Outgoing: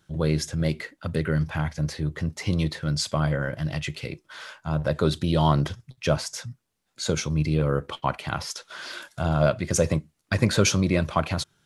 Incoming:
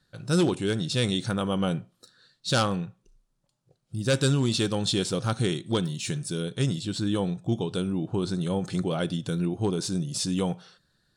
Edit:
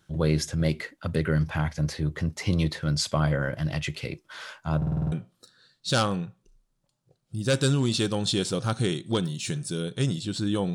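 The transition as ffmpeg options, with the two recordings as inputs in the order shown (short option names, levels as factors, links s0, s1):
-filter_complex "[0:a]apad=whole_dur=10.74,atrim=end=10.74,asplit=7[s0][s1][s2][s3][s4][s5][s6];[s0]atrim=end=4.822[s7];[s1]atrim=start=4.768:end=4.822[s8];[s2]atrim=start=4.768:end=4.822[s9];[s3]atrim=start=4.768:end=4.822[s10];[s4]atrim=start=4.768:end=4.822[s11];[s5]atrim=start=4.768:end=4.822[s12];[s6]atrim=start=4.768:end=4.822[s13];[1:a]atrim=start=1.718:end=7.34[s14];[s7][s8]acrossfade=d=0.004:c1=hsin:c2=hsin[s15];[s15][s9]acrossfade=d=0.004:c1=hsin:c2=hsin[s16];[s16][s10]acrossfade=d=0.004:c1=hsin:c2=hsin[s17];[s17][s11]acrossfade=d=0.004:c1=hsin:c2=hsin[s18];[s18][s12]acrossfade=d=0.004:c1=hsin:c2=hsin[s19];[s19][s13]acrossfade=d=0.004:c1=hsin:c2=hsin[s20];[s20][s14]acrossfade=d=0.004:c1=hsin:c2=hsin"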